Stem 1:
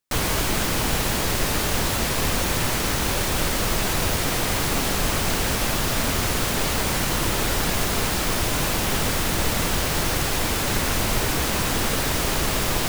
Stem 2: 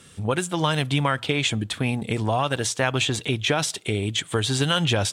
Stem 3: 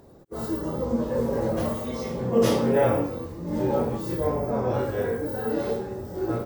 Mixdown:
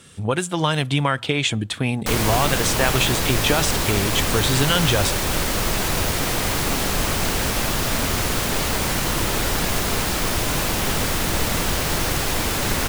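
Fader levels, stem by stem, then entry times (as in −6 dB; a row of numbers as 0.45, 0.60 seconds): +1.0 dB, +2.0 dB, muted; 1.95 s, 0.00 s, muted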